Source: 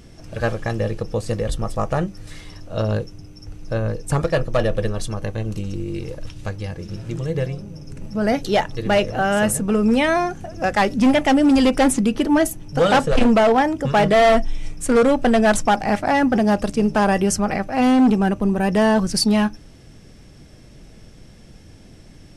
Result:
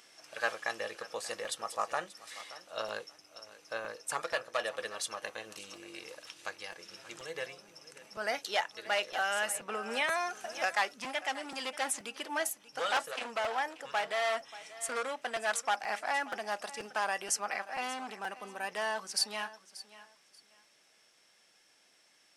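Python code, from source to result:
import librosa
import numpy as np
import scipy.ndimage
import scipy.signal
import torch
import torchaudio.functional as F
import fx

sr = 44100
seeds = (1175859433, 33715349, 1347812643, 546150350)

y = fx.rider(x, sr, range_db=5, speed_s=0.5)
y = scipy.signal.sosfilt(scipy.signal.butter(2, 1000.0, 'highpass', fs=sr, output='sos'), y)
y = fx.echo_feedback(y, sr, ms=584, feedback_pct=22, wet_db=-17)
y = fx.buffer_crackle(y, sr, first_s=0.96, period_s=0.48, block=256, kind='repeat')
y = fx.band_squash(y, sr, depth_pct=70, at=(9.13, 10.74))
y = y * librosa.db_to_amplitude(-8.0)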